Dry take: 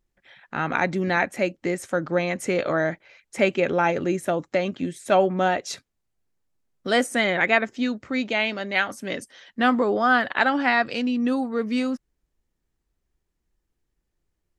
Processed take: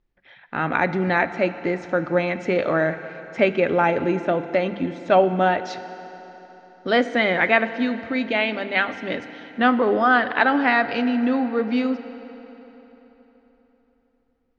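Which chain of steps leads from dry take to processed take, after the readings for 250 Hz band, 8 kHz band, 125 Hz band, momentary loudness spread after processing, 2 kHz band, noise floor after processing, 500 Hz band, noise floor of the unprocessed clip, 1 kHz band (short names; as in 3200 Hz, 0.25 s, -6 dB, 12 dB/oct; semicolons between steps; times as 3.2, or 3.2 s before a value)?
+2.5 dB, under -10 dB, +2.0 dB, 15 LU, +2.0 dB, -65 dBFS, +2.5 dB, -78 dBFS, +2.5 dB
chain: Bessel low-pass 3300 Hz, order 8; notches 50/100/150/200 Hz; FDN reverb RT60 3.9 s, high-frequency decay 0.8×, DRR 11 dB; gain +2.5 dB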